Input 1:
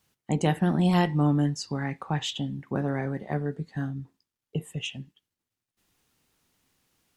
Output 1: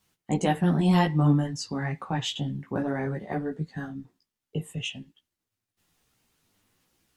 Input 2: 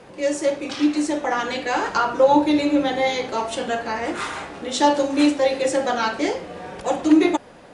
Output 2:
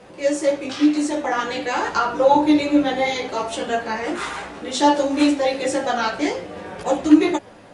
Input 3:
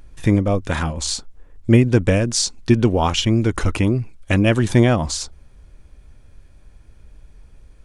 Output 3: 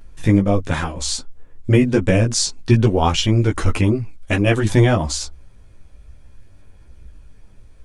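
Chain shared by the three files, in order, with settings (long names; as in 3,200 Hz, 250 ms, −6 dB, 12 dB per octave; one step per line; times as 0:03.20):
multi-voice chorus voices 4, 0.55 Hz, delay 15 ms, depth 4.8 ms
level +3.5 dB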